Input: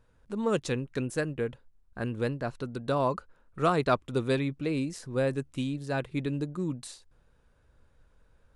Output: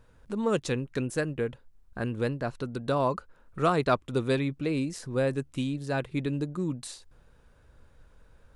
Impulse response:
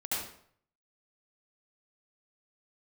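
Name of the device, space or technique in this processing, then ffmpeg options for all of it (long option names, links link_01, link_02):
parallel compression: -filter_complex "[0:a]asplit=2[link_01][link_02];[link_02]acompressor=threshold=-46dB:ratio=6,volume=0dB[link_03];[link_01][link_03]amix=inputs=2:normalize=0"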